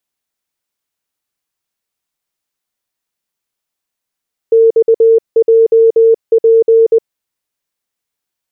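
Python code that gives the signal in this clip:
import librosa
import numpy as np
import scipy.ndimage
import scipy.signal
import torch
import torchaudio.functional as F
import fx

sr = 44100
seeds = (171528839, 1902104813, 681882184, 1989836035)

y = fx.morse(sr, text='XJP', wpm=20, hz=453.0, level_db=-4.0)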